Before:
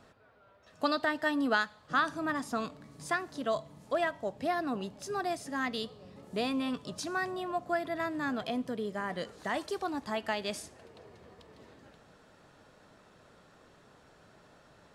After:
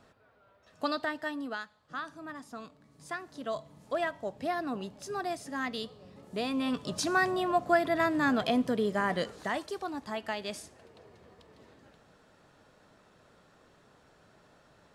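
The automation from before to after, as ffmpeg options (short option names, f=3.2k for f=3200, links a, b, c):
-af "volume=14.5dB,afade=t=out:st=0.97:d=0.58:silence=0.398107,afade=t=in:st=2.79:d=1.21:silence=0.354813,afade=t=in:st=6.47:d=0.56:silence=0.421697,afade=t=out:st=9.1:d=0.54:silence=0.375837"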